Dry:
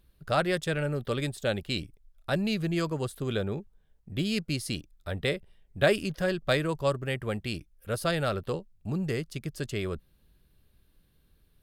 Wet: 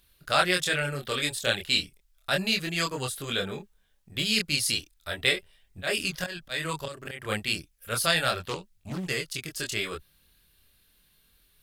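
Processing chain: tilt shelf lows -8.5 dB; 5.23–7.4 auto swell 0.198 s; chorus voices 2, 0.34 Hz, delay 25 ms, depth 3.4 ms; 8.4–9.09 Doppler distortion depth 0.43 ms; gain +6 dB

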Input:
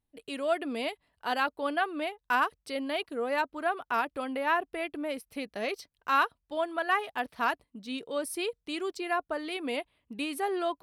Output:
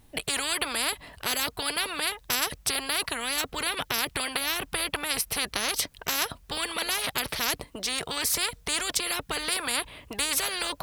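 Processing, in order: spectral compressor 10:1; gain +5.5 dB

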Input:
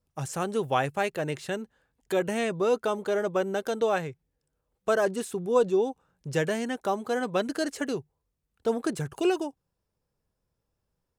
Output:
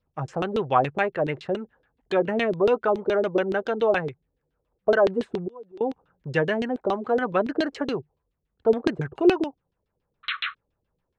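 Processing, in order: 5.4–5.81 flipped gate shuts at -27 dBFS, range -27 dB; 10.23–10.55 painted sound noise 1100–4200 Hz -32 dBFS; LFO low-pass saw down 7.1 Hz 300–3900 Hz; gain +2 dB

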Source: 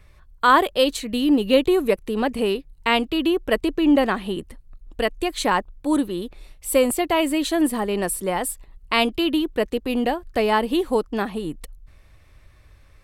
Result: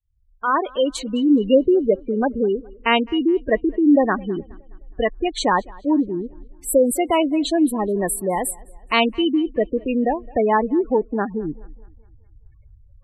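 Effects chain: opening faded in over 1.13 s; spectral gate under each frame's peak -15 dB strong; tape echo 0.21 s, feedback 46%, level -23.5 dB, low-pass 5400 Hz; gain +2.5 dB

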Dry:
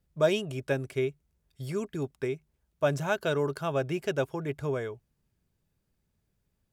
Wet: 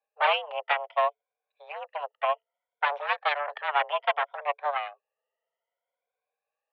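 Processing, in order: moving spectral ripple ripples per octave 1.4, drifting +0.62 Hz, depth 21 dB; added harmonics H 6 -8 dB, 7 -26 dB, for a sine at -9 dBFS; mistuned SSB +290 Hz 240–2900 Hz; gain -3.5 dB

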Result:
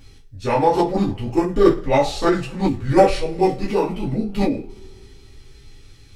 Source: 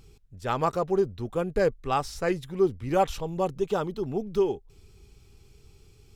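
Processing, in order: two-slope reverb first 0.29 s, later 2.3 s, from -28 dB, DRR -5.5 dB; formant shift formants -5 st; gain +3 dB

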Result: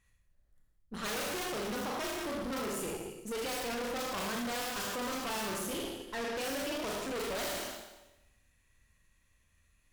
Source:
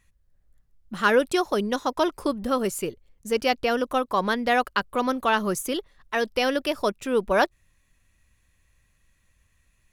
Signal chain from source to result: wrapped overs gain 13 dB; Schroeder reverb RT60 0.94 s, combs from 26 ms, DRR -2 dB; tube stage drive 31 dB, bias 0.7; gain -3.5 dB

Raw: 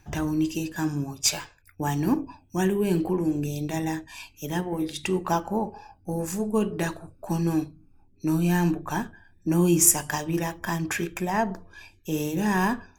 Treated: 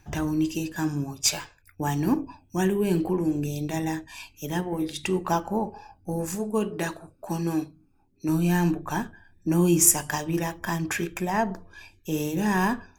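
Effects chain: 6.35–8.29 low shelf 120 Hz -11 dB

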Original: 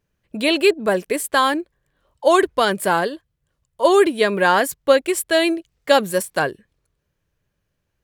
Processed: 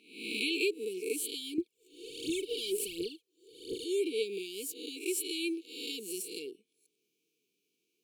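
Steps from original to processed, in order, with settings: spectral swells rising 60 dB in 0.53 s; HPF 290 Hz 24 dB/oct; compressor 2.5:1, threshold -36 dBFS, peak gain reduction 18 dB; 1.58–3.84 phaser 1.4 Hz, delay 3.4 ms, feedback 74%; brick-wall FIR band-stop 480–2200 Hz

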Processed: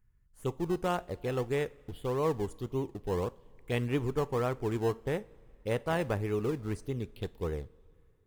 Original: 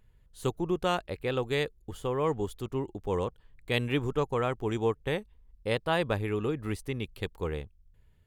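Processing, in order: AGC gain up to 5.5 dB; envelope phaser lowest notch 600 Hz, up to 4400 Hz, full sweep at -21.5 dBFS; in parallel at -11.5 dB: decimation with a swept rate 26×, swing 100% 1.7 Hz; on the sum: two-slope reverb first 0.35 s, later 3 s, from -18 dB, DRR 16 dB; gain -8.5 dB

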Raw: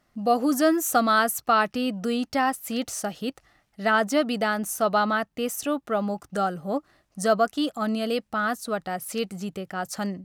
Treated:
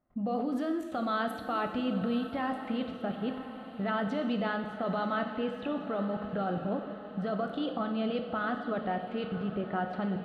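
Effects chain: low-pass opened by the level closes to 1300 Hz, open at -16.5 dBFS; tilt shelf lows +5 dB, about 1500 Hz; limiter -18 dBFS, peak gain reduction 11.5 dB; resonant high shelf 4700 Hz -9.5 dB, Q 3; level quantiser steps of 16 dB; diffused feedback echo 0.983 s, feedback 56%, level -12.5 dB; non-linear reverb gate 0.44 s falling, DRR 5 dB

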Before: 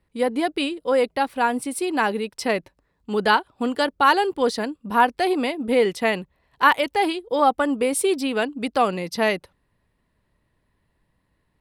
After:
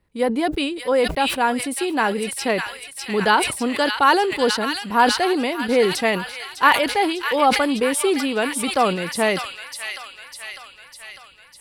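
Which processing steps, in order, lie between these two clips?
thin delay 0.601 s, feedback 60%, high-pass 2000 Hz, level -3 dB; sustainer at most 78 dB/s; gain +1 dB

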